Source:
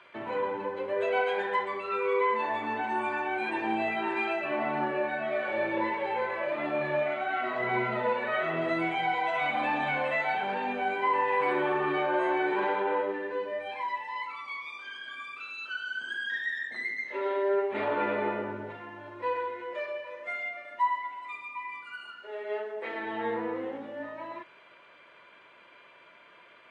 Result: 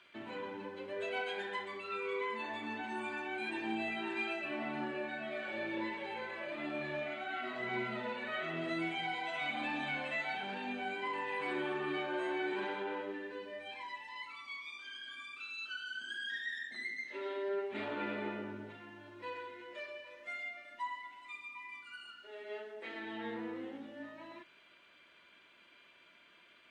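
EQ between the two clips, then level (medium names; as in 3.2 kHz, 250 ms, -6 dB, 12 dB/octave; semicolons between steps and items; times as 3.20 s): graphic EQ 125/500/1000/2000 Hz -10/-12/-11/-6 dB; +1.0 dB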